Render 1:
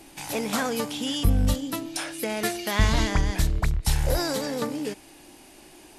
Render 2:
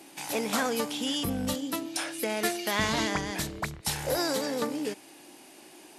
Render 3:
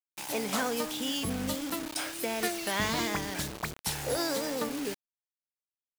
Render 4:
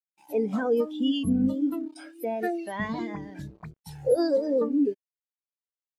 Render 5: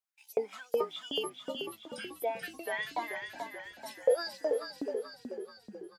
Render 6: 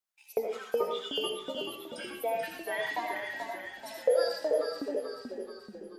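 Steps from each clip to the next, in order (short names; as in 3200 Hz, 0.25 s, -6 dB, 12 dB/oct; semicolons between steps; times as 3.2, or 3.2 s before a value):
HPF 200 Hz 12 dB/oct; gain -1 dB
vibrato 1.4 Hz 78 cents; requantised 6-bit, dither none; gain -2.5 dB
in parallel at 0 dB: limiter -25.5 dBFS, peak gain reduction 11 dB; on the sum: spectral expander 2.5:1
LFO high-pass saw up 2.7 Hz 600–7800 Hz; frequency-shifting echo 0.434 s, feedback 54%, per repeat -36 Hz, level -6 dB
reverb RT60 0.45 s, pre-delay 40 ms, DRR 1 dB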